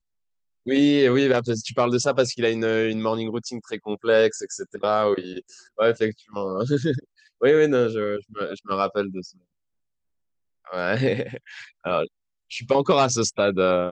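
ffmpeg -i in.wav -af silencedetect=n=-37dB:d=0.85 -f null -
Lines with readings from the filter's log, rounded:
silence_start: 9.30
silence_end: 10.67 | silence_duration: 1.37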